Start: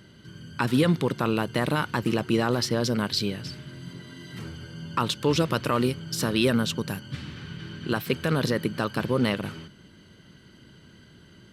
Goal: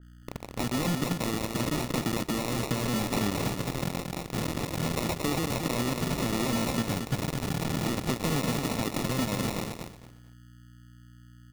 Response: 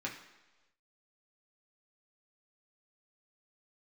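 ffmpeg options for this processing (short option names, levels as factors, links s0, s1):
-filter_complex "[0:a]equalizer=f=125:t=o:w=1:g=6,equalizer=f=250:t=o:w=1:g=8,equalizer=f=4000:t=o:w=1:g=5,alimiter=limit=0.158:level=0:latency=1:release=101,acompressor=threshold=0.0562:ratio=16,aresample=11025,acrusher=bits=4:mix=0:aa=0.000001,aresample=44100,aeval=exprs='val(0)+0.00398*(sin(2*PI*60*n/s)+sin(2*PI*2*60*n/s)/2+sin(2*PI*3*60*n/s)/3+sin(2*PI*4*60*n/s)/4+sin(2*PI*5*60*n/s)/5)':c=same,acrusher=samples=28:mix=1:aa=0.000001,aecho=1:1:226|452|678:0.531|0.117|0.0257,asplit=2[s0][s1];[1:a]atrim=start_sample=2205[s2];[s1][s2]afir=irnorm=-1:irlink=0,volume=0.119[s3];[s0][s3]amix=inputs=2:normalize=0,adynamicequalizer=threshold=0.00447:dfrequency=2700:dqfactor=0.7:tfrequency=2700:tqfactor=0.7:attack=5:release=100:ratio=0.375:range=2.5:mode=boostabove:tftype=highshelf,volume=0.841"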